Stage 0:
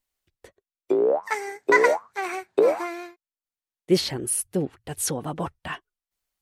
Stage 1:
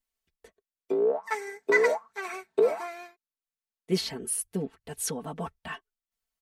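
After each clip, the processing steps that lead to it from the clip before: comb 4.5 ms, depth 83%; trim -7.5 dB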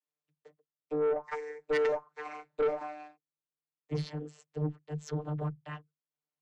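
vocoder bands 32, saw 150 Hz; valve stage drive 24 dB, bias 0.25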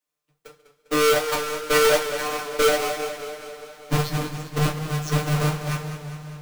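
square wave that keeps the level; two-slope reverb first 0.27 s, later 4.4 s, from -22 dB, DRR 1.5 dB; modulated delay 200 ms, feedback 62%, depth 61 cents, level -11 dB; trim +7.5 dB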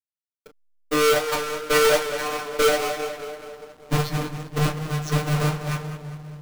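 hysteresis with a dead band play -37 dBFS; bit crusher 11-bit

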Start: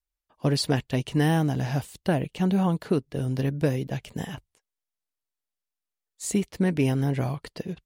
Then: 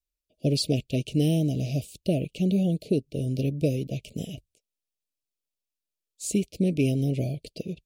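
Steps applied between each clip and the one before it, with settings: Chebyshev band-stop 640–2400 Hz, order 4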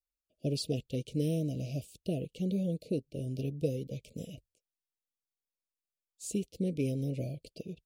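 peaking EQ 500 Hz +8 dB 0.3 oct; Shepard-style phaser rising 0.7 Hz; trim -8.5 dB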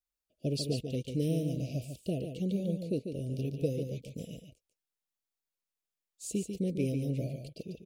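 delay 145 ms -7 dB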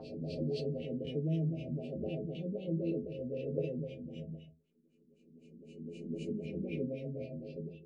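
reverse spectral sustain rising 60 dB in 2.42 s; LFO low-pass sine 3.9 Hz 200–2800 Hz; inharmonic resonator 78 Hz, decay 0.29 s, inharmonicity 0.008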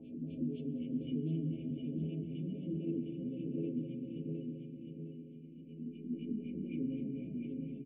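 cascade formant filter i; feedback delay 709 ms, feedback 41%, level -5 dB; on a send at -9.5 dB: reverberation RT60 5.5 s, pre-delay 38 ms; on the sum: trim +5 dB

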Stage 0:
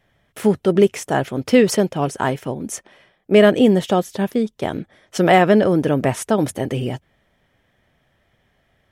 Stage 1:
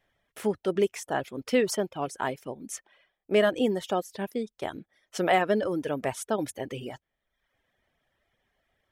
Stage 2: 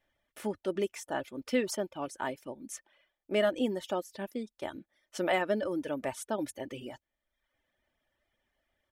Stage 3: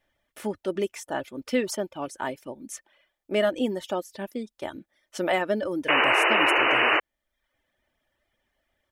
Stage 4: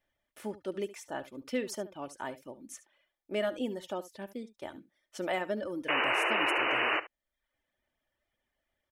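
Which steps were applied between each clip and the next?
reverb removal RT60 0.78 s; peaking EQ 130 Hz -8 dB 2 oct; trim -8 dB
comb 3.4 ms, depth 40%; trim -5.5 dB
painted sound noise, 5.88–7.00 s, 300–3000 Hz -25 dBFS; trim +4 dB
delay 71 ms -16.5 dB; trim -8 dB

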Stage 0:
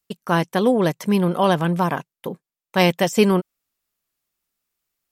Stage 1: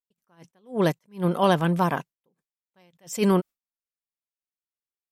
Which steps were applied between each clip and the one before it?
gate with hold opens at -33 dBFS; attacks held to a fixed rise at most 230 dB/s; trim -2 dB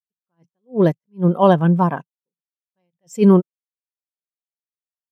spectral contrast expander 1.5:1; trim +6 dB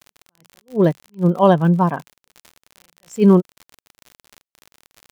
crackle 59 per s -28 dBFS

